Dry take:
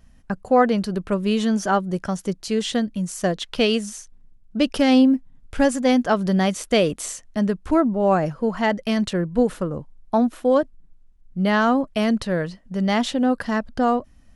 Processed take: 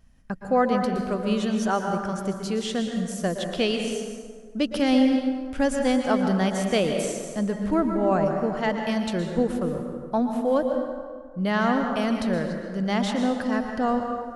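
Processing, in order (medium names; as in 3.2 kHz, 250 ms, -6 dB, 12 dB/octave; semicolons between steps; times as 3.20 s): plate-style reverb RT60 1.8 s, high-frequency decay 0.55×, pre-delay 105 ms, DRR 3.5 dB; trim -5 dB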